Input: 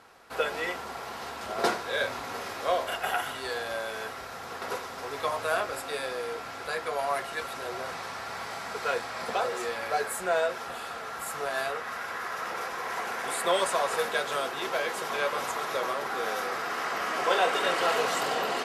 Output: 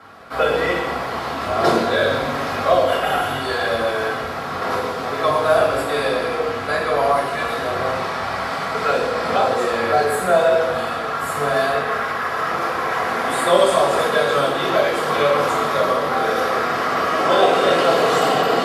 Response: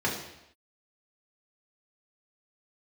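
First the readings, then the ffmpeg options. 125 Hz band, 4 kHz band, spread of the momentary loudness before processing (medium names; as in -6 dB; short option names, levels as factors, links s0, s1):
+18.5 dB, +8.5 dB, 11 LU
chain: -filter_complex "[1:a]atrim=start_sample=2205,asetrate=30429,aresample=44100[s0];[0:a][s0]afir=irnorm=-1:irlink=0,acrossover=split=720|3400[s1][s2][s3];[s2]alimiter=limit=0.211:level=0:latency=1:release=449[s4];[s1][s4][s3]amix=inputs=3:normalize=0"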